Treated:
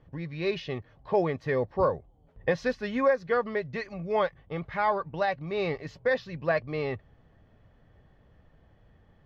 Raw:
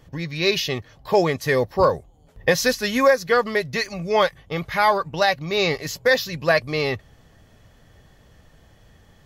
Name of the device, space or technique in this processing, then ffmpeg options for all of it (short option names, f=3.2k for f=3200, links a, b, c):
phone in a pocket: -af "lowpass=3.3k,highshelf=f=2.1k:g=-9,volume=-6.5dB"